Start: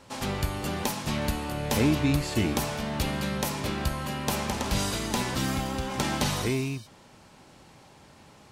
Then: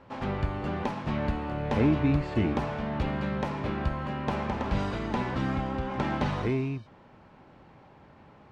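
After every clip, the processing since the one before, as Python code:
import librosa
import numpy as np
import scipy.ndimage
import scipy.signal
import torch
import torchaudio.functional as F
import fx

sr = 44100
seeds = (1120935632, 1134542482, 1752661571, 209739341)

y = scipy.signal.sosfilt(scipy.signal.butter(2, 1900.0, 'lowpass', fs=sr, output='sos'), x)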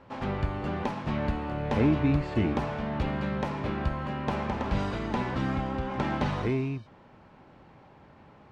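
y = x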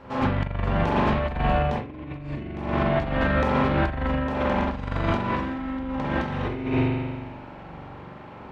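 y = fx.rev_spring(x, sr, rt60_s=1.5, pass_ms=(42,), chirp_ms=30, drr_db=-6.0)
y = fx.over_compress(y, sr, threshold_db=-26.0, ratio=-0.5)
y = y * 10.0 ** (2.0 / 20.0)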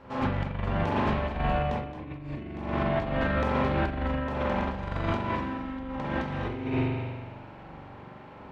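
y = x + 10.0 ** (-11.0 / 20.0) * np.pad(x, (int(220 * sr / 1000.0), 0))[:len(x)]
y = y * 10.0 ** (-4.5 / 20.0)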